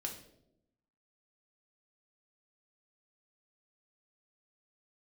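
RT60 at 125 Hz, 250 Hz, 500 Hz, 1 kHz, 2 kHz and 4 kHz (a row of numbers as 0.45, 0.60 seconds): 1.1, 1.1, 0.95, 0.65, 0.55, 0.55 seconds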